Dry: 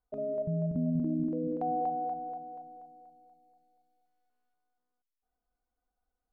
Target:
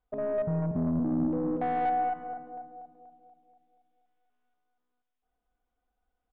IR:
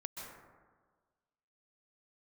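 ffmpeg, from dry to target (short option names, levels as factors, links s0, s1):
-filter_complex "[0:a]aresample=8000,aresample=44100,aeval=exprs='(tanh(28.2*val(0)+0.3)-tanh(0.3))/28.2':c=same,asplit=2[s0][s1];[s1]adelay=378,lowpass=f=970:p=1,volume=0.126,asplit=2[s2][s3];[s3]adelay=378,lowpass=f=970:p=1,volume=0.42,asplit=2[s4][s5];[s5]adelay=378,lowpass=f=970:p=1,volume=0.42[s6];[s0][s2][s4][s6]amix=inputs=4:normalize=0,asplit=2[s7][s8];[1:a]atrim=start_sample=2205,asetrate=57330,aresample=44100[s9];[s8][s9]afir=irnorm=-1:irlink=0,volume=0.631[s10];[s7][s10]amix=inputs=2:normalize=0,volume=1.41"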